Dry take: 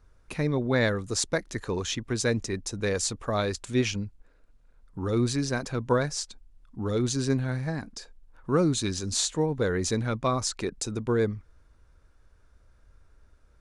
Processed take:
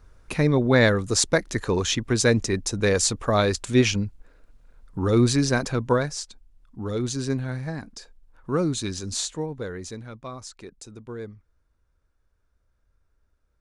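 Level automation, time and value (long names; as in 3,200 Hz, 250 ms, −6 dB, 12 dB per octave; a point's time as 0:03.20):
0:05.64 +6.5 dB
0:06.19 −0.5 dB
0:09.12 −0.5 dB
0:10.08 −11 dB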